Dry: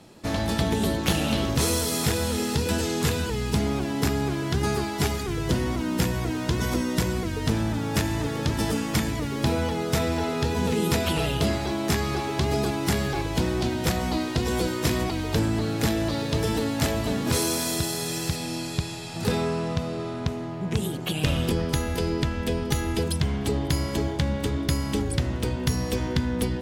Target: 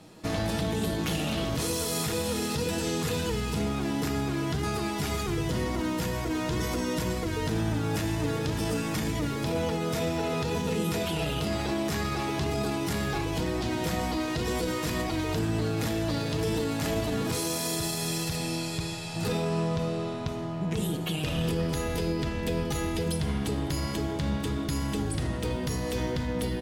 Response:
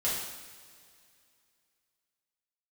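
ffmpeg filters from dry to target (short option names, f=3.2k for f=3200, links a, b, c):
-filter_complex "[0:a]aecho=1:1:6.4:0.33,alimiter=limit=-20dB:level=0:latency=1:release=20,asplit=2[a][b];[1:a]atrim=start_sample=2205[c];[b][c]afir=irnorm=-1:irlink=0,volume=-13.5dB[d];[a][d]amix=inputs=2:normalize=0,volume=-3dB"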